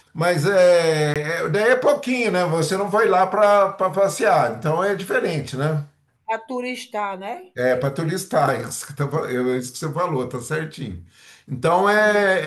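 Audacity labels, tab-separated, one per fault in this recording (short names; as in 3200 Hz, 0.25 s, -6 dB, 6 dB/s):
1.140000	1.160000	gap 17 ms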